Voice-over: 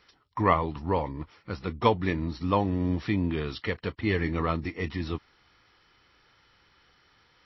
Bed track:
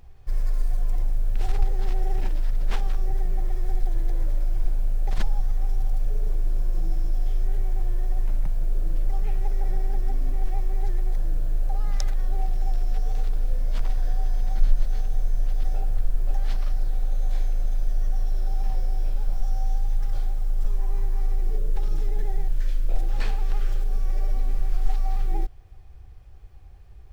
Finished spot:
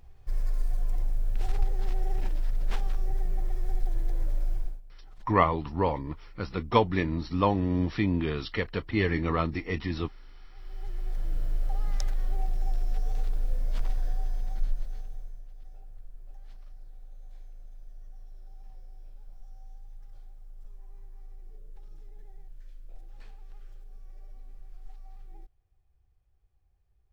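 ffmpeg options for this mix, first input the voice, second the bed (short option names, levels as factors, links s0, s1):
-filter_complex "[0:a]adelay=4900,volume=1.06[s0];[1:a]volume=7.5,afade=t=out:st=4.52:d=0.29:silence=0.0794328,afade=t=in:st=10.54:d=0.88:silence=0.0794328,afade=t=out:st=13.89:d=1.55:silence=0.11885[s1];[s0][s1]amix=inputs=2:normalize=0"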